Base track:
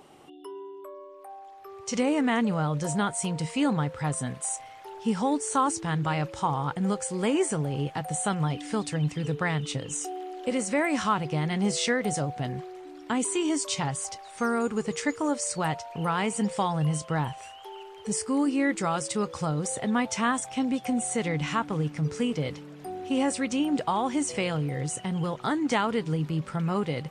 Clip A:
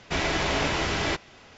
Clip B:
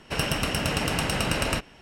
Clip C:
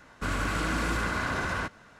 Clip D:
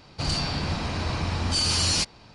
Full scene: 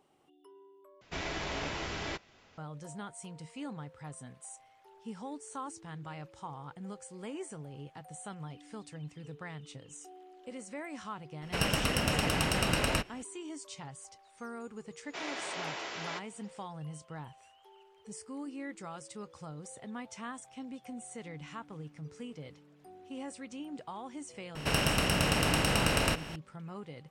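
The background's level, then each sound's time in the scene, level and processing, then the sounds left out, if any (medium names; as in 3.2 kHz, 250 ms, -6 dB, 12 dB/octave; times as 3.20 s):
base track -16.5 dB
1.01 s: replace with A -11 dB
11.42 s: add B -3.5 dB
15.03 s: add A -12 dB + high-pass 410 Hz
24.55 s: add B -4.5 dB + spectral levelling over time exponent 0.6
not used: C, D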